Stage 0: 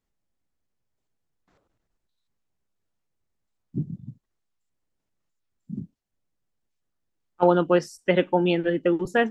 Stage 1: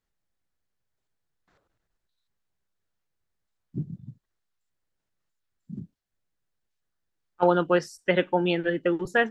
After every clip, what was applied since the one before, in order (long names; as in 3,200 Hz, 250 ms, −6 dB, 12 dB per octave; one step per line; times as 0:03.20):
graphic EQ with 15 bands 250 Hz −4 dB, 1,600 Hz +5 dB, 4,000 Hz +3 dB
level −2 dB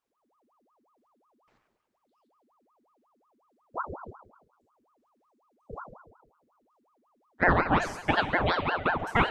four-comb reverb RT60 1.1 s, combs from 30 ms, DRR 6.5 dB
ring modulator whose carrier an LFO sweeps 740 Hz, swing 70%, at 5.5 Hz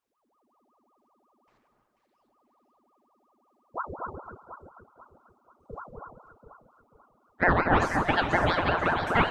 delay that swaps between a low-pass and a high-pass 244 ms, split 1,500 Hz, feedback 62%, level −2.5 dB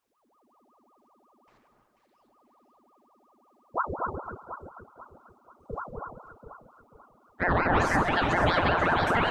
brickwall limiter −19 dBFS, peak gain reduction 11.5 dB
level +5 dB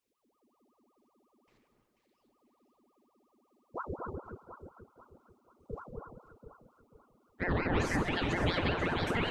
flat-topped bell 1,000 Hz −8.5 dB
level −3.5 dB